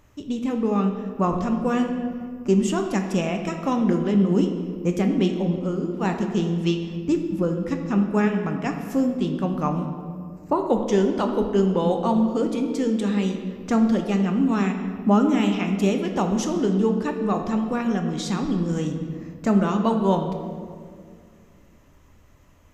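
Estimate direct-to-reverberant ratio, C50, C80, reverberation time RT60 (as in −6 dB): 4.0 dB, 6.5 dB, 7.5 dB, 2.1 s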